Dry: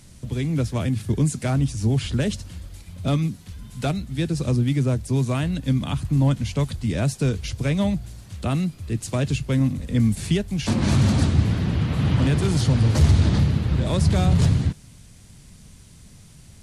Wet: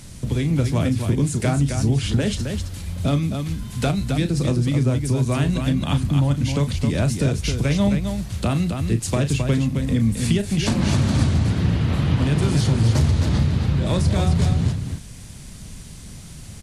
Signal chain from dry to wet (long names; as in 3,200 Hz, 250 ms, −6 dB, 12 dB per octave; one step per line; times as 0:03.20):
downward compressor 3 to 1, threshold −27 dBFS, peak gain reduction 12 dB
on a send: loudspeakers that aren't time-aligned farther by 12 metres −10 dB, 91 metres −6 dB
on the sum: level +7.5 dB